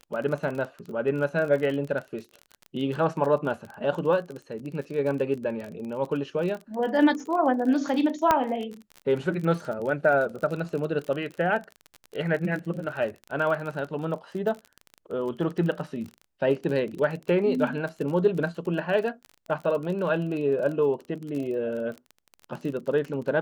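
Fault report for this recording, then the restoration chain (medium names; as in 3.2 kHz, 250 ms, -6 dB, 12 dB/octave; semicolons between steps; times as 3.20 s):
crackle 32 per s -32 dBFS
8.31 s: pop -7 dBFS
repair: de-click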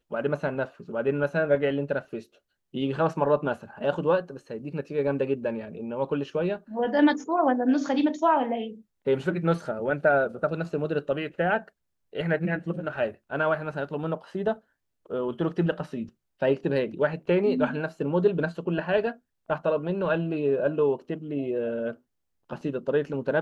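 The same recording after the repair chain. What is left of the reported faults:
nothing left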